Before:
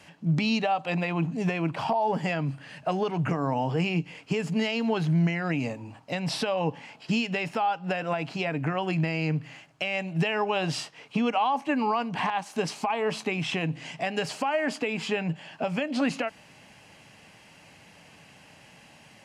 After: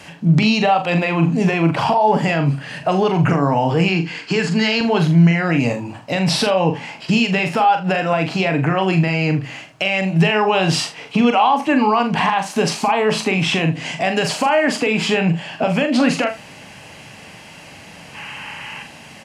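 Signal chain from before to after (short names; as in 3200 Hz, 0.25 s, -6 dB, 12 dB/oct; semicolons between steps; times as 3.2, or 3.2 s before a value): 18.15–18.83 spectral gain 810–3200 Hz +10 dB; in parallel at +2 dB: limiter -24 dBFS, peak gain reduction 8 dB; 3.88–4.81 on the sum: speaker cabinet 180–8700 Hz, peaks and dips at 580 Hz -7 dB, 1600 Hz +9 dB, 4400 Hz +9 dB; early reflections 42 ms -7 dB, 78 ms -16 dB; gain +5.5 dB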